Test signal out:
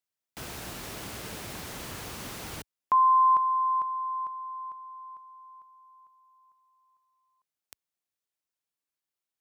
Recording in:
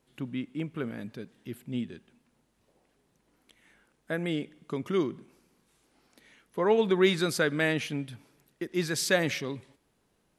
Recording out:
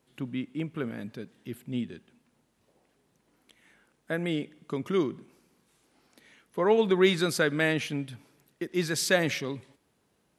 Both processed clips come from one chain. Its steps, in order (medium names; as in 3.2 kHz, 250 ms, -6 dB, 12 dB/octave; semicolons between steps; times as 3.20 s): high-pass 61 Hz; trim +1 dB